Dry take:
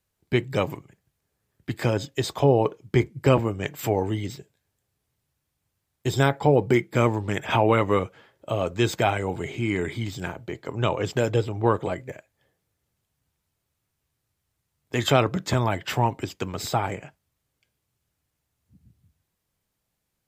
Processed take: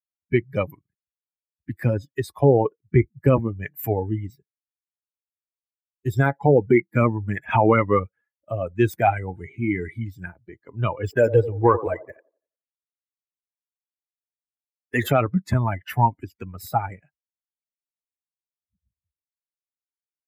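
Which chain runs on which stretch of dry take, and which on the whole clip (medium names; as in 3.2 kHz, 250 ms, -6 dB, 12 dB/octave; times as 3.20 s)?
11.04–15.08 s: peaking EQ 170 Hz -6 dB 1.1 oct + waveshaping leveller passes 1 + feedback echo behind a band-pass 87 ms, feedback 54%, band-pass 590 Hz, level -8 dB
whole clip: expander on every frequency bin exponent 2; high-order bell 4.8 kHz -15.5 dB; loudness maximiser +14 dB; trim -5.5 dB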